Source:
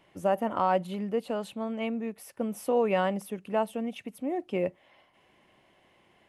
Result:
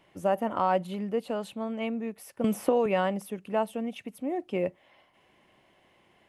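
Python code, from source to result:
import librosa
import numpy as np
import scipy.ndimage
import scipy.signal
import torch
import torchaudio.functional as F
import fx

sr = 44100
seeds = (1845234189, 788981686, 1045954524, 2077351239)

y = fx.band_squash(x, sr, depth_pct=100, at=(2.44, 2.86))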